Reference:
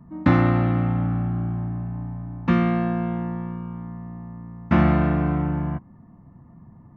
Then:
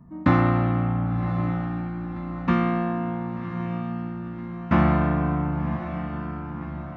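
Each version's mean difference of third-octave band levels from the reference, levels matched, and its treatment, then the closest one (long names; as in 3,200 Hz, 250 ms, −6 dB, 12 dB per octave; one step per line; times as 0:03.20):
5.5 dB: notch filter 860 Hz, Q 28
dynamic equaliser 1,000 Hz, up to +5 dB, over −41 dBFS, Q 1.7
feedback delay with all-pass diffusion 1,094 ms, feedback 51%, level −9.5 dB
level −2 dB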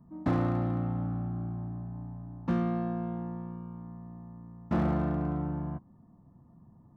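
1.5 dB: parametric band 2,300 Hz −13.5 dB 1.4 octaves
hard clipping −13.5 dBFS, distortion −17 dB
low-shelf EQ 250 Hz −4.5 dB
level −6 dB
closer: second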